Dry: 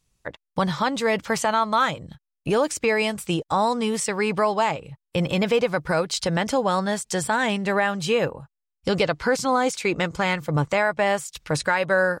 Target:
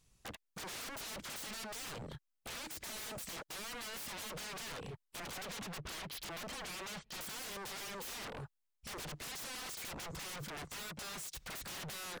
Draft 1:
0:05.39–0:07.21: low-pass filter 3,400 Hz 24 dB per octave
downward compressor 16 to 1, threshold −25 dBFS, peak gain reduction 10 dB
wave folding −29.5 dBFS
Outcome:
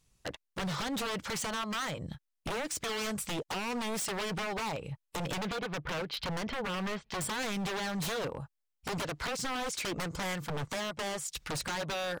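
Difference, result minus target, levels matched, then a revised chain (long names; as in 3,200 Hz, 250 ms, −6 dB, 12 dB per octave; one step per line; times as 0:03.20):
wave folding: distortion −28 dB
0:05.39–0:07.21: low-pass filter 3,400 Hz 24 dB per octave
downward compressor 16 to 1, threshold −25 dBFS, peak gain reduction 10 dB
wave folding −40 dBFS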